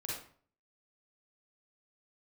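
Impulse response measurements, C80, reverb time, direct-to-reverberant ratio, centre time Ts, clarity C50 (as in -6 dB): 6.0 dB, 0.50 s, -5.5 dB, 55 ms, -1.0 dB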